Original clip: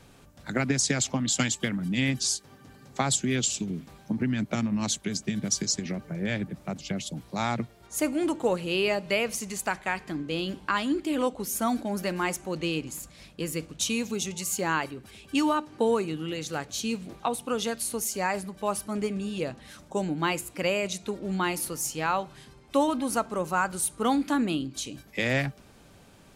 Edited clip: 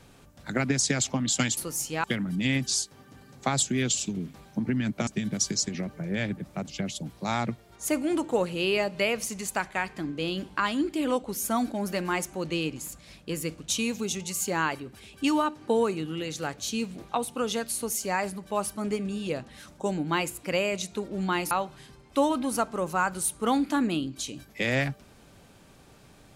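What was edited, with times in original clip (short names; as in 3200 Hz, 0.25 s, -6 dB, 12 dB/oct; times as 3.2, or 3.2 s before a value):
4.6–5.18 cut
21.62–22.09 move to 1.57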